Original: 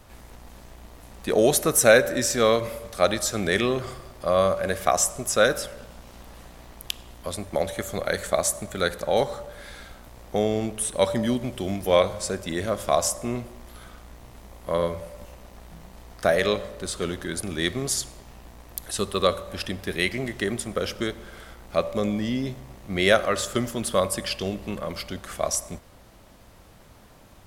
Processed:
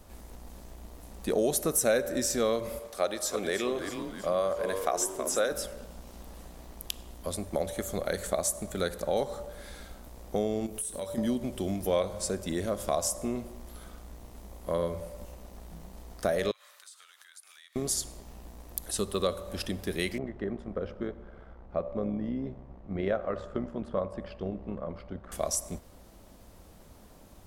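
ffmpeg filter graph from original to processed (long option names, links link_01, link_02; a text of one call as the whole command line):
ffmpeg -i in.wav -filter_complex "[0:a]asettb=1/sr,asplit=3[link_01][link_02][link_03];[link_01]atrim=end=2.794[link_04];[link_02]atrim=start=2.79:end=5.52,asetpts=PTS-STARTPTS,afade=type=in:duration=0.004:curve=qsin,afade=type=out:start_time=2.726:duration=0.004:curve=qsin,bass=frequency=250:gain=-14,treble=frequency=4000:gain=-3,asplit=6[link_05][link_06][link_07][link_08][link_09][link_10];[link_06]adelay=322,afreqshift=-98,volume=-10dB[link_11];[link_07]adelay=644,afreqshift=-196,volume=-16dB[link_12];[link_08]adelay=966,afreqshift=-294,volume=-22dB[link_13];[link_09]adelay=1288,afreqshift=-392,volume=-28.1dB[link_14];[link_10]adelay=1610,afreqshift=-490,volume=-34.1dB[link_15];[link_05][link_11][link_12][link_13][link_14][link_15]amix=inputs=6:normalize=0,atrim=end_sample=120393[link_16];[link_03]atrim=start=5.516[link_17];[link_04][link_16]acrossfade=duration=0.004:curve1=hsin:curve2=qsin[link_18];[link_18][link_17]acrossfade=duration=0.004:curve1=qsin:curve2=hsin,asettb=1/sr,asplit=3[link_19][link_20][link_21];[link_19]atrim=end=10.664[link_22];[link_20]atrim=start=10.66:end=11.18,asetpts=PTS-STARTPTS,afade=type=in:duration=0.004:curve=qsin,afade=type=out:start_time=0.516:duration=0.004:curve=qsin,highshelf=frequency=8700:gain=12,acompressor=threshold=-33dB:ratio=4:attack=3.2:release=140:knee=1:detection=peak,asplit=2[link_23][link_24];[link_24]adelay=21,volume=-8.5dB[link_25];[link_23][link_25]amix=inputs=2:normalize=0,atrim=end_sample=22932[link_26];[link_21]atrim=start=11.176[link_27];[link_22][link_26]acrossfade=duration=0.004:curve1=hsin:curve2=qsin[link_28];[link_28][link_27]acrossfade=duration=0.004:curve1=qsin:curve2=hsin,asettb=1/sr,asplit=3[link_29][link_30][link_31];[link_29]atrim=end=16.514[link_32];[link_30]atrim=start=16.51:end=17.76,asetpts=PTS-STARTPTS,afade=type=in:duration=0.004:curve=qsin,afade=type=out:start_time=1.246:duration=0.004:curve=qsin,highpass=frequency=1200:width=0.5412,highpass=frequency=1200:width=1.3066,acompressor=threshold=-45dB:ratio=8:attack=3.2:release=140:knee=1:detection=peak[link_33];[link_31]atrim=start=17.756[link_34];[link_32][link_33]acrossfade=duration=0.004:curve1=hsin:curve2=qsin[link_35];[link_35][link_34]acrossfade=duration=0.004:curve1=qsin:curve2=hsin,asettb=1/sr,asplit=3[link_36][link_37][link_38];[link_36]atrim=end=20.184[link_39];[link_37]atrim=start=20.18:end=25.32,asetpts=PTS-STARTPTS,afade=type=in:duration=0.004:curve=qsin,afade=type=out:start_time=5.136:duration=0.004:curve=qsin,lowpass=1400,equalizer=frequency=310:width=1.5:gain=-3,tremolo=f=66:d=0.519[link_40];[link_38]atrim=start=25.316[link_41];[link_39][link_40]acrossfade=duration=0.004:curve1=hsin:curve2=qsin[link_42];[link_42][link_41]acrossfade=duration=0.004:curve1=qsin:curve2=hsin,equalizer=frequency=2000:width=0.47:gain=-7.5,acompressor=threshold=-27dB:ratio=2,equalizer=frequency=120:width=3.7:gain=-8.5" out.wav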